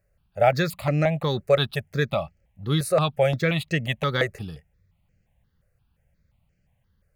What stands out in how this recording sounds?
notches that jump at a steady rate 5.7 Hz 910–3,600 Hz

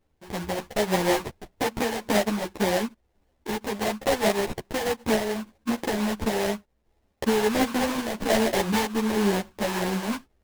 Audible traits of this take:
a quantiser's noise floor 12 bits, dither triangular
sample-and-hold tremolo
aliases and images of a low sample rate 1,300 Hz, jitter 20%
a shimmering, thickened sound

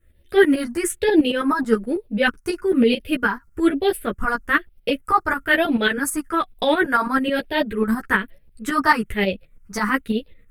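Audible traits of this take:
phaser sweep stages 4, 1.1 Hz, lowest notch 530–1,200 Hz
tremolo saw up 9.2 Hz, depth 70%
a shimmering, thickened sound

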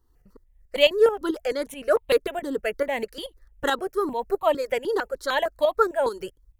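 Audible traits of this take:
tremolo saw up 4.6 Hz, depth 60%
notches that jump at a steady rate 6.6 Hz 640–1,500 Hz

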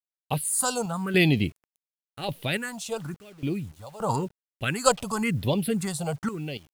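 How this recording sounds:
phaser sweep stages 4, 0.95 Hz, lowest notch 300–1,400 Hz
sample-and-hold tremolo 3.5 Hz, depth 95%
a quantiser's noise floor 10 bits, dither none

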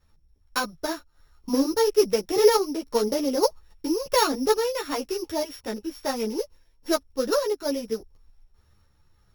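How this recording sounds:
a buzz of ramps at a fixed pitch in blocks of 8 samples
sample-and-hold tremolo
a shimmering, thickened sound

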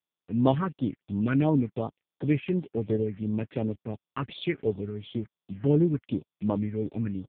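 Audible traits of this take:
a quantiser's noise floor 8 bits, dither none
phaser sweep stages 4, 2.8 Hz, lowest notch 680–2,100 Hz
AMR narrowband

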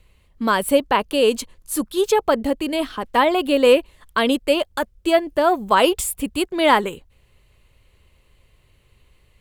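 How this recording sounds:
background noise floor −58 dBFS
spectral slope −3.0 dB per octave

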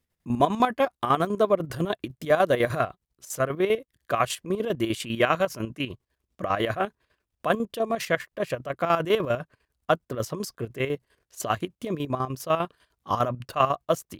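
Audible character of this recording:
chopped level 10 Hz, depth 65%, duty 50%

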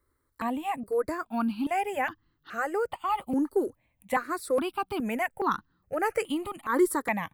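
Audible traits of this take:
notches that jump at a steady rate 2.4 Hz 700–2,300 Hz

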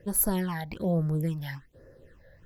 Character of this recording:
phaser sweep stages 8, 1.2 Hz, lowest notch 340–3,200 Hz

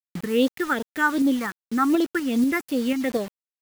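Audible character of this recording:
phaser sweep stages 4, 2.6 Hz, lowest notch 550–2,300 Hz
a quantiser's noise floor 6 bits, dither none
tremolo saw up 4.1 Hz, depth 35%

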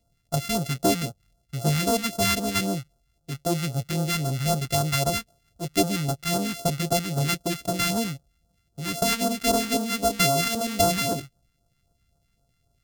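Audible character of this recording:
a buzz of ramps at a fixed pitch in blocks of 64 samples
phaser sweep stages 2, 3.8 Hz, lowest notch 590–2,100 Hz

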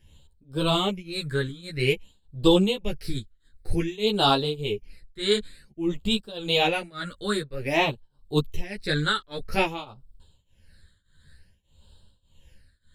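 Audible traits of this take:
phaser sweep stages 8, 0.52 Hz, lowest notch 760–2,000 Hz
tremolo triangle 1.7 Hz, depth 95%
a shimmering, thickened sound

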